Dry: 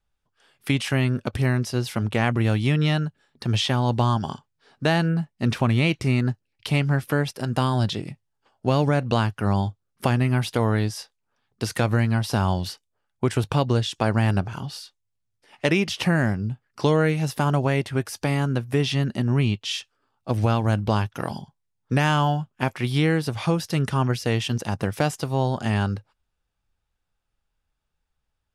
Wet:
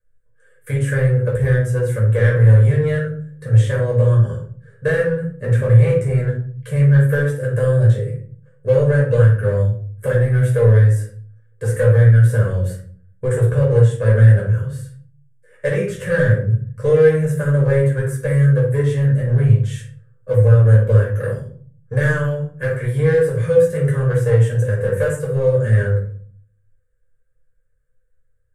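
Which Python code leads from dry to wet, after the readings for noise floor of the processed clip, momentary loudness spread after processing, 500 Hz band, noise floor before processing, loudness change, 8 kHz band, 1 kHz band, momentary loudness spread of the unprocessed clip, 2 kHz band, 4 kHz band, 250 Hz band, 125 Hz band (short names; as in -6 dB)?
-59 dBFS, 12 LU, +10.0 dB, -77 dBFS, +7.5 dB, n/a, -8.5 dB, 9 LU, +3.5 dB, under -10 dB, -0.5 dB, +9.5 dB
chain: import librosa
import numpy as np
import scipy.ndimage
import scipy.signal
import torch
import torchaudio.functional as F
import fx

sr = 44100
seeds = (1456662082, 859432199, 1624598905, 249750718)

p1 = fx.curve_eq(x, sr, hz=(140.0, 210.0, 320.0, 510.0, 760.0, 1700.0, 2600.0, 5100.0, 7800.0, 13000.0), db=(0, -14, -16, 13, -27, 5, -17, -22, 1, -5))
p2 = np.clip(10.0 ** (21.5 / 20.0) * p1, -1.0, 1.0) / 10.0 ** (21.5 / 20.0)
p3 = p1 + (p2 * 10.0 ** (-6.0 / 20.0))
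p4 = fx.room_shoebox(p3, sr, seeds[0], volume_m3=430.0, walls='furnished', distance_m=5.4)
y = p4 * 10.0 ** (-7.0 / 20.0)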